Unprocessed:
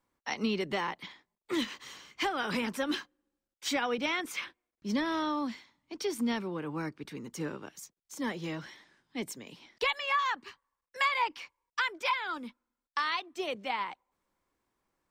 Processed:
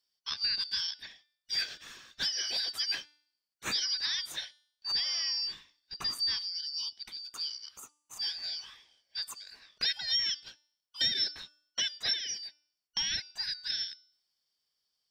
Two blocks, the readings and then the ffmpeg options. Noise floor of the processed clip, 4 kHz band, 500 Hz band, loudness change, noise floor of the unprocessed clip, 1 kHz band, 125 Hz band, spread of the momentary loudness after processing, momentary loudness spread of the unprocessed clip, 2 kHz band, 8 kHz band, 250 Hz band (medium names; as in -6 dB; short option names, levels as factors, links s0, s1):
under -85 dBFS, +9.0 dB, -20.5 dB, +1.5 dB, under -85 dBFS, -19.0 dB, under -10 dB, 17 LU, 17 LU, -7.0 dB, +6.0 dB, -23.5 dB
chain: -af "afftfilt=real='real(if(lt(b,272),68*(eq(floor(b/68),0)*3+eq(floor(b/68),1)*2+eq(floor(b/68),2)*1+eq(floor(b/68),3)*0)+mod(b,68),b),0)':imag='imag(if(lt(b,272),68*(eq(floor(b/68),0)*3+eq(floor(b/68),1)*2+eq(floor(b/68),2)*1+eq(floor(b/68),3)*0)+mod(b,68),b),0)':win_size=2048:overlap=0.75,bandreject=f=296.3:t=h:w=4,bandreject=f=592.6:t=h:w=4,bandreject=f=888.9:t=h:w=4,bandreject=f=1185.2:t=h:w=4,bandreject=f=1481.5:t=h:w=4,bandreject=f=1777.8:t=h:w=4,bandreject=f=2074.1:t=h:w=4,bandreject=f=2370.4:t=h:w=4,bandreject=f=2666.7:t=h:w=4,bandreject=f=2963:t=h:w=4,bandreject=f=3259.3:t=h:w=4,bandreject=f=3555.6:t=h:w=4,bandreject=f=3851.9:t=h:w=4,bandreject=f=4148.2:t=h:w=4,bandreject=f=4444.5:t=h:w=4,bandreject=f=4740.8:t=h:w=4,bandreject=f=5037.1:t=h:w=4,bandreject=f=5333.4:t=h:w=4,bandreject=f=5629.7:t=h:w=4,bandreject=f=5926:t=h:w=4,bandreject=f=6222.3:t=h:w=4,bandreject=f=6518.6:t=h:w=4,bandreject=f=6814.9:t=h:w=4,bandreject=f=7111.2:t=h:w=4,bandreject=f=7407.5:t=h:w=4,bandreject=f=7703.8:t=h:w=4,bandreject=f=8000.1:t=h:w=4,bandreject=f=8296.4:t=h:w=4,bandreject=f=8592.7:t=h:w=4,bandreject=f=8889:t=h:w=4,bandreject=f=9185.3:t=h:w=4,bandreject=f=9481.6:t=h:w=4,bandreject=f=9777.9:t=h:w=4,bandreject=f=10074.2:t=h:w=4,bandreject=f=10370.5:t=h:w=4,bandreject=f=10666.8:t=h:w=4,bandreject=f=10963.1:t=h:w=4,bandreject=f=11259.4:t=h:w=4,volume=0.891"